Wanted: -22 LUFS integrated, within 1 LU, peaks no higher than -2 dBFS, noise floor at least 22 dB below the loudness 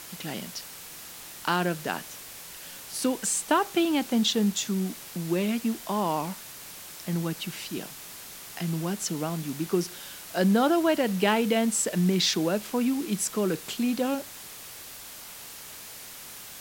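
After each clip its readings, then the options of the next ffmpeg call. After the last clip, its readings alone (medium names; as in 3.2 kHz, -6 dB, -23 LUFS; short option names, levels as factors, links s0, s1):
noise floor -43 dBFS; noise floor target -50 dBFS; loudness -27.5 LUFS; peak level -8.0 dBFS; loudness target -22.0 LUFS
-> -af "afftdn=nr=7:nf=-43"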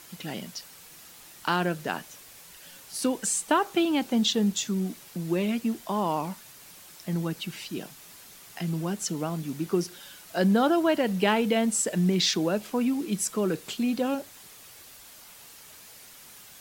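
noise floor -49 dBFS; noise floor target -50 dBFS
-> -af "afftdn=nr=6:nf=-49"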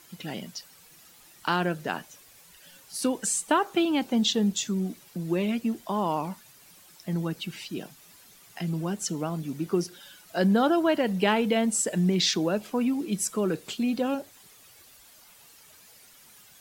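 noise floor -54 dBFS; loudness -27.5 LUFS; peak level -8.5 dBFS; loudness target -22.0 LUFS
-> -af "volume=1.88"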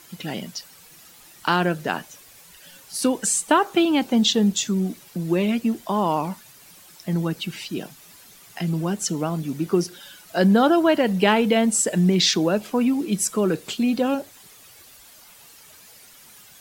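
loudness -22.0 LUFS; peak level -3.0 dBFS; noise floor -49 dBFS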